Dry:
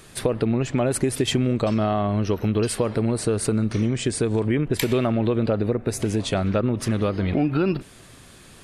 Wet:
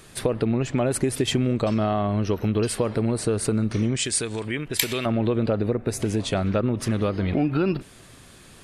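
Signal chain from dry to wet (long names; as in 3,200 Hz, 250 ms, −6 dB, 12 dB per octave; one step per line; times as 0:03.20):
0:03.96–0:05.06: tilt shelving filter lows −8 dB, about 1,300 Hz
level −1 dB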